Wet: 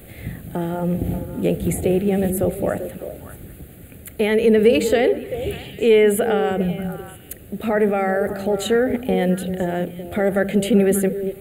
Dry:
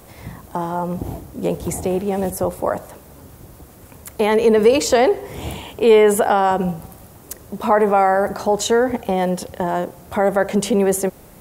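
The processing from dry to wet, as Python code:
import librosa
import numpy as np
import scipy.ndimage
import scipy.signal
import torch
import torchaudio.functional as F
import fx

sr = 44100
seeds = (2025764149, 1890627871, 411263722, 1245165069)

y = fx.fixed_phaser(x, sr, hz=2400.0, stages=4)
y = fx.rider(y, sr, range_db=4, speed_s=2.0)
y = fx.echo_stepped(y, sr, ms=195, hz=170.0, octaves=1.4, feedback_pct=70, wet_db=-5.0)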